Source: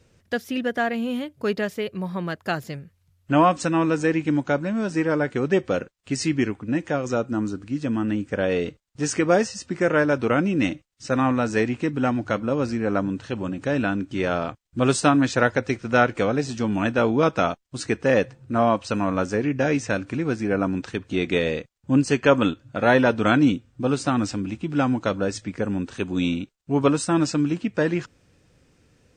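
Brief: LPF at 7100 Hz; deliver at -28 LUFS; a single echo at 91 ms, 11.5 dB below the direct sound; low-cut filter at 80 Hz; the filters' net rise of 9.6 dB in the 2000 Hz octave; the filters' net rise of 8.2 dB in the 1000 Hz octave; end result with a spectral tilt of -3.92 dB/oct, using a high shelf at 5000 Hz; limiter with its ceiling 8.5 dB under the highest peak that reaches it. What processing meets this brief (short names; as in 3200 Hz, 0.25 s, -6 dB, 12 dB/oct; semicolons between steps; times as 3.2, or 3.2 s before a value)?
HPF 80 Hz; LPF 7100 Hz; bell 1000 Hz +8 dB; bell 2000 Hz +9 dB; high shelf 5000 Hz +5 dB; limiter -4 dBFS; echo 91 ms -11.5 dB; gain -7.5 dB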